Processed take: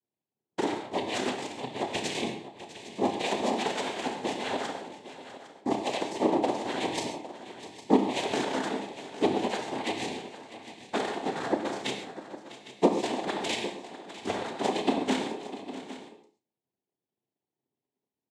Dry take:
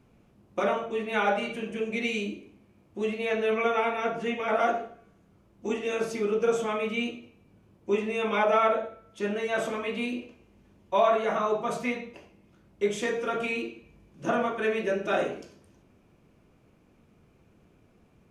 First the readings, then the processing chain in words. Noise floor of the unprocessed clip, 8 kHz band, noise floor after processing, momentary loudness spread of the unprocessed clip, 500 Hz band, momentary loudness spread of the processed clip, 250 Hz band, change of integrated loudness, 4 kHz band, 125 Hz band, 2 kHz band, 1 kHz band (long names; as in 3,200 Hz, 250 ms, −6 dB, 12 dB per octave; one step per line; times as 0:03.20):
−62 dBFS, +5.5 dB, below −85 dBFS, 12 LU, −4.0 dB, 17 LU, +2.5 dB, −2.5 dB, +4.5 dB, +0.5 dB, −5.0 dB, −2.0 dB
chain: stylus tracing distortion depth 0.11 ms
parametric band 5,200 Hz +14.5 dB 0.29 octaves
downward compressor 12 to 1, threshold −27 dBFS, peak gain reduction 10.5 dB
power curve on the samples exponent 2
hollow resonant body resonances 400/2,500/3,500 Hz, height 15 dB, ringing for 45 ms
cochlear-implant simulation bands 6
double-tracking delay 31 ms −12 dB
multi-tap delay 651/807 ms −15.5/−15 dB
reverb whose tail is shaped and stops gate 160 ms flat, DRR 5.5 dB
level +3 dB